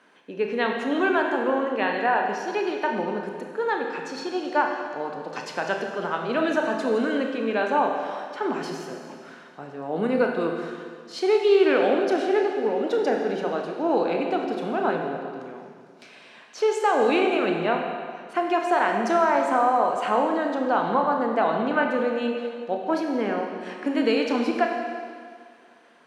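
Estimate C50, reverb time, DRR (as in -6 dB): 3.5 dB, 2.0 s, 1.5 dB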